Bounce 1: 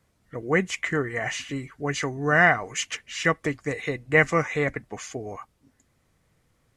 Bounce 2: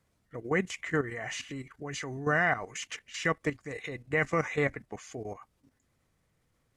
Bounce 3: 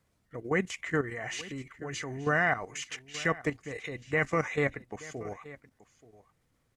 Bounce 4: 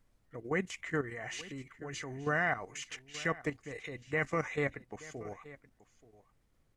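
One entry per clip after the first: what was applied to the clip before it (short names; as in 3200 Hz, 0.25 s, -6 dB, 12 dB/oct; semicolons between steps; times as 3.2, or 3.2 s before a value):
level quantiser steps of 12 dB; gain -1.5 dB
echo 0.879 s -18.5 dB
added noise brown -67 dBFS; gain -4.5 dB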